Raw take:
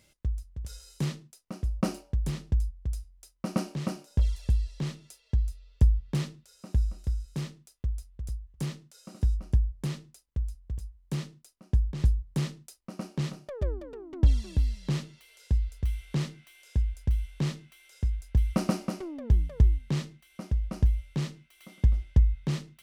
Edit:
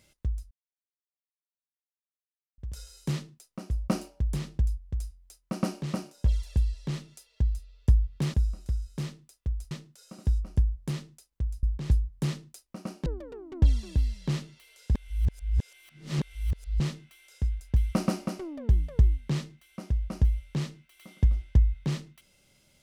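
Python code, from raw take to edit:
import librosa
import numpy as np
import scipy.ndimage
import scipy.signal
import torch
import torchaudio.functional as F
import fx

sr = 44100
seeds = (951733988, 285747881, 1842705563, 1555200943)

y = fx.edit(x, sr, fx.insert_silence(at_s=0.51, length_s=2.07),
    fx.cut(start_s=6.27, length_s=0.45),
    fx.cut(start_s=8.09, length_s=0.58),
    fx.cut(start_s=10.59, length_s=1.18),
    fx.cut(start_s=13.2, length_s=0.47),
    fx.reverse_span(start_s=15.56, length_s=1.85), tone=tone)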